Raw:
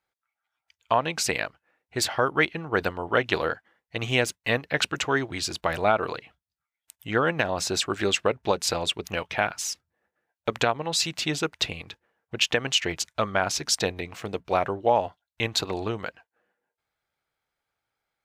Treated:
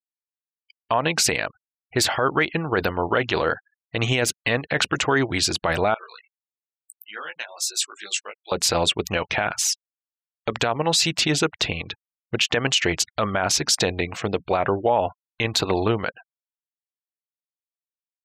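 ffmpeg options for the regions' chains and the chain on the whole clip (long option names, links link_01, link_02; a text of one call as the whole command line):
ffmpeg -i in.wav -filter_complex "[0:a]asettb=1/sr,asplit=3[link_01][link_02][link_03];[link_01]atrim=end=5.944[link_04];[link_02]atrim=start=5.94:end=8.52,asetpts=PTS-STARTPTS,afade=type=in:duration=0.004:curve=qsin,afade=type=out:start_time=2.576:duration=0.004:curve=qsin,aderivative,flanger=delay=16.5:depth=3.1:speed=1.1[link_05];[link_03]atrim=start=8.516[link_06];[link_04][link_05]acrossfade=duration=0.004:curve1=hsin:curve2=qsin[link_07];[link_07][link_06]acrossfade=duration=0.004:curve1=qsin:curve2=hsin,afftfilt=real='re*gte(hypot(re,im),0.00447)':imag='im*gte(hypot(re,im),0.00447)':win_size=1024:overlap=0.75,alimiter=limit=-18dB:level=0:latency=1:release=38,volume=8.5dB" out.wav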